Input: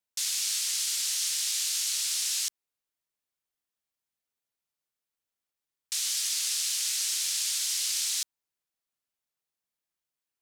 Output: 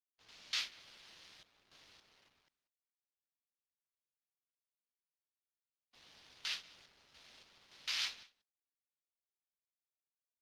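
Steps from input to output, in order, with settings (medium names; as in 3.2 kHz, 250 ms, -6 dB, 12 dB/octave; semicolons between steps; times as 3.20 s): level-controlled noise filter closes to 510 Hz, open at -29 dBFS; gate with hold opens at -17 dBFS; dynamic bell 9.3 kHz, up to -5 dB, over -47 dBFS, Q 1.8; random-step tremolo, depth 70%; crossover distortion -58 dBFS; distance through air 280 m; echo from a far wall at 32 m, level -21 dB; trim +9.5 dB; Opus 48 kbps 48 kHz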